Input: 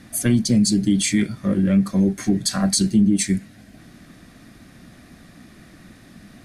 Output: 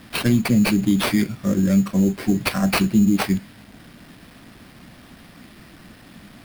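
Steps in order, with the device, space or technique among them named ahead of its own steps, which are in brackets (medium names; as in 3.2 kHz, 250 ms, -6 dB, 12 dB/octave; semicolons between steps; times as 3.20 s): early 8-bit sampler (sample-rate reducer 6.9 kHz, jitter 0%; bit crusher 8-bit)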